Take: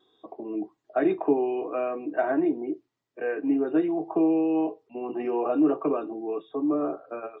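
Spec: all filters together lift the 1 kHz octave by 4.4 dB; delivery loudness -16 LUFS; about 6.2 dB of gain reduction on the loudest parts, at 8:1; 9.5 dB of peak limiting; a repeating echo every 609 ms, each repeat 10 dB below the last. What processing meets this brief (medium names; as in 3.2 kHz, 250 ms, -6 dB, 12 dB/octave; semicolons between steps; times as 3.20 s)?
peaking EQ 1 kHz +6.5 dB; compression 8:1, threshold -23 dBFS; peak limiter -23 dBFS; feedback delay 609 ms, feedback 32%, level -10 dB; trim +15.5 dB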